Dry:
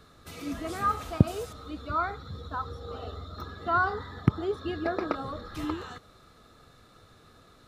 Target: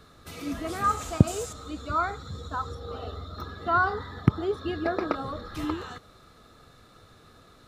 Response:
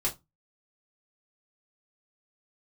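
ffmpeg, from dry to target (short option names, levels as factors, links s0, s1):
-filter_complex "[0:a]asettb=1/sr,asplit=3[s0][s1][s2];[s0]atrim=end=0.844[s3];[s1]atrim=start=0.84:end=2.75,asetpts=PTS-STARTPTS,afade=t=in:d=0.004:c=qsin,afade=t=out:st=1.906:d=0.004:c=qsin,equalizer=f=7300:t=o:w=0.54:g=13.5[s4];[s2]atrim=start=2.746[s5];[s3][s4]acrossfade=d=0.004:c1=hsin:c2=qsin[s6];[s6][s5]acrossfade=d=0.004:c1=qsin:c2=hsin,volume=1.26"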